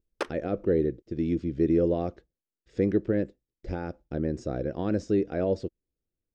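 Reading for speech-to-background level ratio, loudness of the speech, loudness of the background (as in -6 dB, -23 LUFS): 8.5 dB, -29.0 LUFS, -37.5 LUFS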